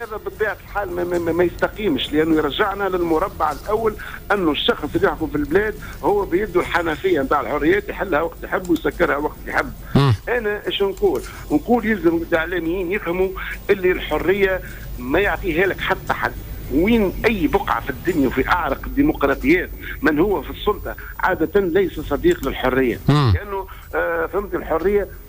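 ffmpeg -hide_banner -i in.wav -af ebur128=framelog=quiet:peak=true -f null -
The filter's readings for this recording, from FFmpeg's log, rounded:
Integrated loudness:
  I:         -20.0 LUFS
  Threshold: -30.0 LUFS
Loudness range:
  LRA:         1.1 LU
  Threshold: -39.9 LUFS
  LRA low:   -20.4 LUFS
  LRA high:  -19.4 LUFS
True peak:
  Peak:       -6.5 dBFS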